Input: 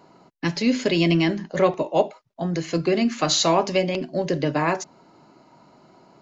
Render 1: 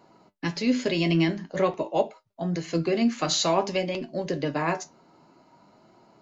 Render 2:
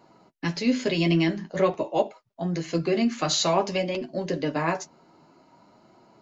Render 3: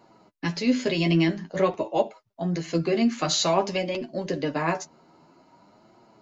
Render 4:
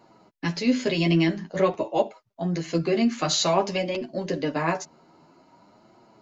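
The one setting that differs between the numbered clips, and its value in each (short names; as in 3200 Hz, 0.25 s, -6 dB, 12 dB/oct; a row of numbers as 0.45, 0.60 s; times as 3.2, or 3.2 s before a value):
flange, regen: +62, -29, +22, -2%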